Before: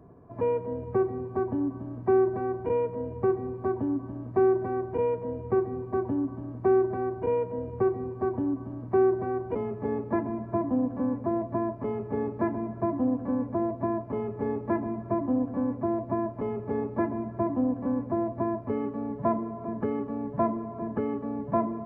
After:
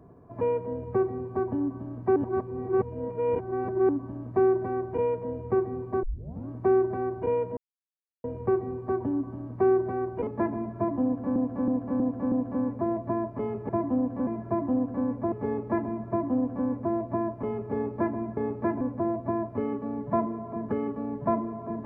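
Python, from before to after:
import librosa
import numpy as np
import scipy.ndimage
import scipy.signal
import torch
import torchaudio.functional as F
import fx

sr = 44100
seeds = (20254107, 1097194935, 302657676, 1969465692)

y = fx.edit(x, sr, fx.reverse_span(start_s=2.16, length_s=1.73),
    fx.tape_start(start_s=6.03, length_s=0.45),
    fx.insert_silence(at_s=7.57, length_s=0.67),
    fx.cut(start_s=9.6, length_s=0.4),
    fx.repeat(start_s=10.77, length_s=0.32, count=5),
    fx.swap(start_s=12.14, length_s=0.44, other_s=17.35, other_length_s=0.58),
    fx.cut(start_s=13.63, length_s=0.67), tone=tone)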